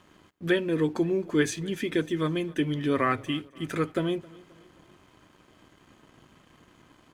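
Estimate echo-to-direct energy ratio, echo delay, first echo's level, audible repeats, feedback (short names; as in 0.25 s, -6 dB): -22.0 dB, 0.265 s, -23.0 dB, 2, 49%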